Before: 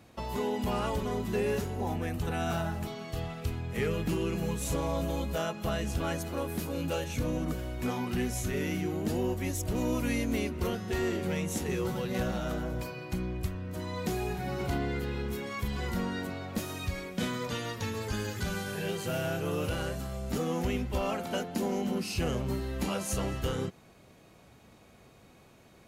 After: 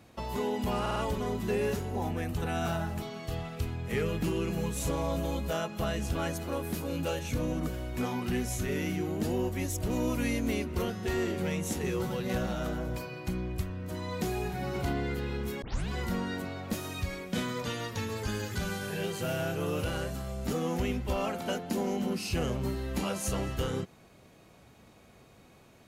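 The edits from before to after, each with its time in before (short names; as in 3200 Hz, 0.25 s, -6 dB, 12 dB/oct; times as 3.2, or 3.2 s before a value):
0.81 stutter 0.05 s, 4 plays
15.47 tape start 0.27 s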